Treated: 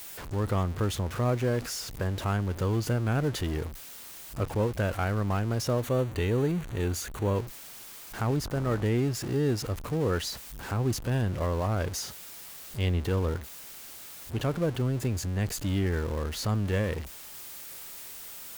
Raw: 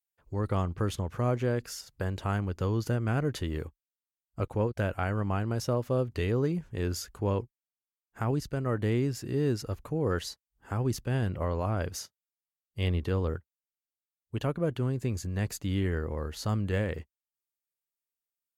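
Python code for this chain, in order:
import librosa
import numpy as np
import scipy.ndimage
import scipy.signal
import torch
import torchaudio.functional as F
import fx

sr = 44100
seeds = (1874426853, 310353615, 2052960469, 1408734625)

y = x + 0.5 * 10.0 ** (-34.5 / 20.0) * np.sign(x)
y = fx.notch(y, sr, hz=5100.0, q=5.0, at=(5.82, 7.36))
y = fx.dmg_buzz(y, sr, base_hz=50.0, harmonics=31, level_db=-41.0, tilt_db=-4, odd_only=False, at=(8.43, 8.83), fade=0.02)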